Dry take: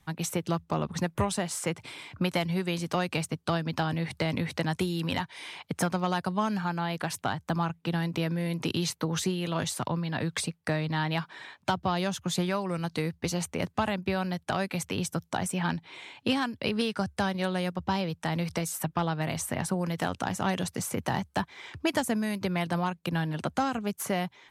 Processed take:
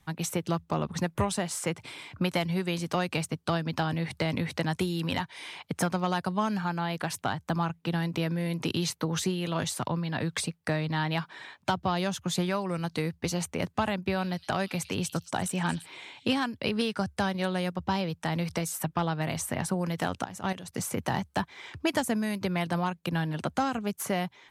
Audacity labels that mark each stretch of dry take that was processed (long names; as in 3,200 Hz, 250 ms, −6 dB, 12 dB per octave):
14.000000	16.310000	echo through a band-pass that steps 114 ms, band-pass from 4,200 Hz, each repeat 0.7 octaves, level −7.5 dB
20.240000	20.740000	output level in coarse steps of 14 dB